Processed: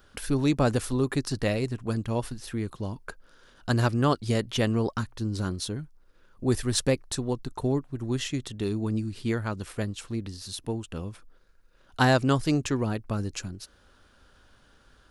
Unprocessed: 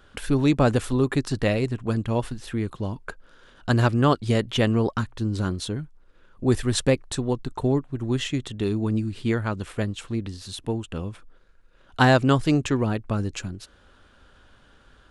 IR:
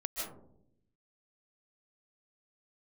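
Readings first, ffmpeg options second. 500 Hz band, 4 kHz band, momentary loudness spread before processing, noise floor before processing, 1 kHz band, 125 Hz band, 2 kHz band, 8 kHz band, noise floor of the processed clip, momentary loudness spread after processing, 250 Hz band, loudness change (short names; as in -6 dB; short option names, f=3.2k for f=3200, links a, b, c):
-4.0 dB, -2.5 dB, 14 LU, -56 dBFS, -4.0 dB, -4.0 dB, -4.0 dB, +0.5 dB, -60 dBFS, 13 LU, -4.0 dB, -4.0 dB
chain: -af "aexciter=amount=1.9:drive=5.4:freq=4.5k,volume=-4dB"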